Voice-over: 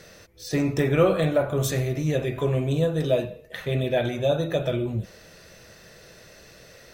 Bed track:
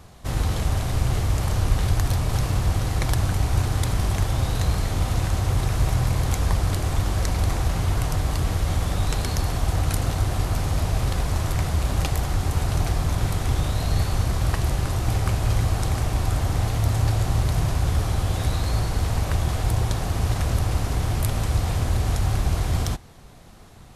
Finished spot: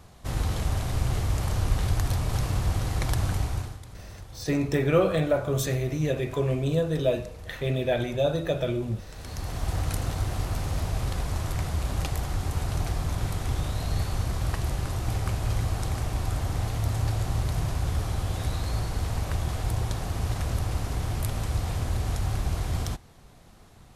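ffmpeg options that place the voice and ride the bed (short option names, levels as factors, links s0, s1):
-filter_complex "[0:a]adelay=3950,volume=0.794[s0];[1:a]volume=3.76,afade=t=out:st=3.35:d=0.44:silence=0.141254,afade=t=in:st=9.11:d=0.6:silence=0.16788[s1];[s0][s1]amix=inputs=2:normalize=0"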